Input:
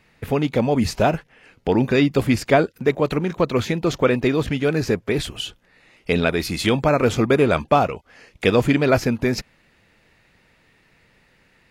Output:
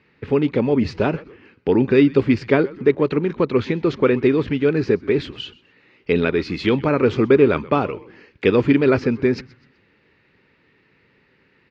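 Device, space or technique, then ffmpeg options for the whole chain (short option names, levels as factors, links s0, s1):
frequency-shifting delay pedal into a guitar cabinet: -filter_complex "[0:a]asplit=4[s0][s1][s2][s3];[s1]adelay=126,afreqshift=-130,volume=0.0891[s4];[s2]adelay=252,afreqshift=-260,volume=0.0355[s5];[s3]adelay=378,afreqshift=-390,volume=0.0143[s6];[s0][s4][s5][s6]amix=inputs=4:normalize=0,highpass=76,equalizer=f=280:t=q:w=4:g=4,equalizer=f=400:t=q:w=4:g=7,equalizer=f=690:t=q:w=4:g=-9,equalizer=f=3500:t=q:w=4:g=-4,lowpass=f=4300:w=0.5412,lowpass=f=4300:w=1.3066,volume=0.891"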